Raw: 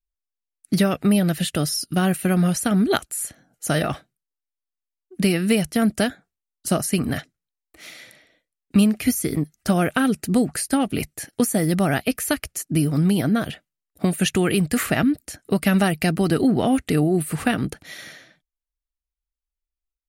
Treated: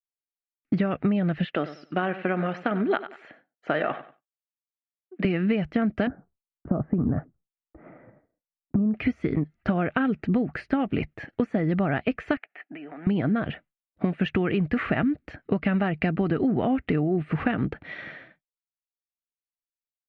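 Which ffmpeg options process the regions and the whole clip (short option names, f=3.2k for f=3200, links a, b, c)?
-filter_complex "[0:a]asettb=1/sr,asplit=3[a][b][c];[a]atrim=end=1.454[d];[b]atrim=start=1.45:end=5.25,asetpts=PTS-STARTPTS,afade=t=in:d=0.004:c=qsin,afade=t=out:st=3.796:d=0.004:c=qsin,highpass=340,lowpass=4.5k,aecho=1:1:94|188|282:0.168|0.042|0.0105,atrim=end_sample=167580[e];[c]atrim=start=5.246[f];[d][e]acrossfade=d=0.004:c1=hsin:c2=qsin[g];[g][f]acrossfade=d=0.004:c1=qsin:c2=hsin,asettb=1/sr,asplit=3[h][i][j];[h]atrim=end=6.074[k];[i]atrim=start=6.07:end=8.94,asetpts=PTS-STARTPTS,afade=t=in:d=0.004:c=qsin,afade=t=out:st=2.866:d=0.004:c=qsin,lowshelf=f=400:g=7.5,acompressor=threshold=-15dB:ratio=6:attack=3.2:release=140:knee=1:detection=peak,lowpass=f=1.2k:w=0.5412,lowpass=f=1.2k:w=1.3066[l];[j]atrim=start=8.936[m];[k][l]acrossfade=d=0.004:c1=hsin:c2=qsin[n];[n][m]acrossfade=d=0.004:c1=qsin:c2=hsin,asettb=1/sr,asplit=3[o][p][q];[o]atrim=end=12.374[r];[p]atrim=start=12.37:end=13.07,asetpts=PTS-STARTPTS,afade=t=in:d=0.004:c=qsin,afade=t=out:st=0.696:d=0.004:c=qsin,highpass=f=340:w=0.5412,highpass=f=340:w=1.3066,equalizer=f=350:t=q:w=4:g=-9,equalizer=f=510:t=q:w=4:g=-9,equalizer=f=740:t=q:w=4:g=7,equalizer=f=1.1k:t=q:w=4:g=-6,equalizer=f=1.8k:t=q:w=4:g=7,equalizer=f=2.6k:t=q:w=4:g=3,lowpass=f=2.9k:w=0.5412,lowpass=f=2.9k:w=1.3066,acompressor=threshold=-38dB:ratio=16:attack=3.2:release=140:knee=1:detection=peak[s];[q]atrim=start=13.066[t];[r][s]acrossfade=d=0.004:c1=hsin:c2=qsin[u];[u][t]acrossfade=d=0.004:c1=qsin:c2=hsin,agate=range=-33dB:threshold=-48dB:ratio=3:detection=peak,lowpass=f=2.5k:w=0.5412,lowpass=f=2.5k:w=1.3066,acompressor=threshold=-23dB:ratio=6,volume=2.5dB"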